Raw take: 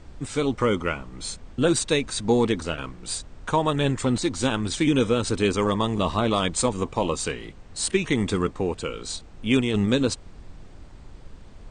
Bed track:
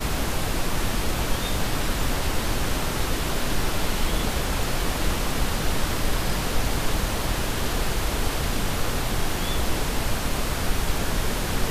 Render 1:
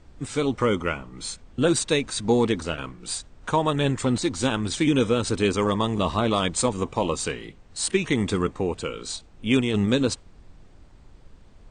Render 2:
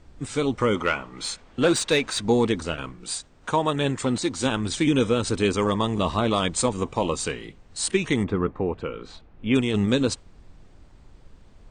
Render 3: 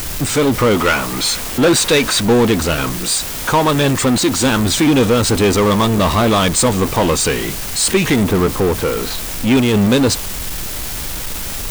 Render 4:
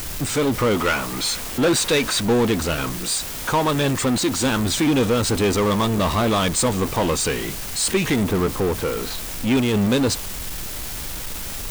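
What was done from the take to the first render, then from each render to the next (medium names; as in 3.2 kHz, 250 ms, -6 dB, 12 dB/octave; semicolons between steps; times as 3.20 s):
noise print and reduce 6 dB
0.75–2.22 s: overdrive pedal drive 13 dB, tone 3.3 kHz, clips at -9.5 dBFS; 3.04–4.46 s: bass shelf 83 Hz -11 dB; 8.23–9.54 s: low-pass 1.5 kHz -> 2.6 kHz
in parallel at -4 dB: word length cut 6-bit, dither triangular; on the sum: power-law waveshaper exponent 0.5
trim -6 dB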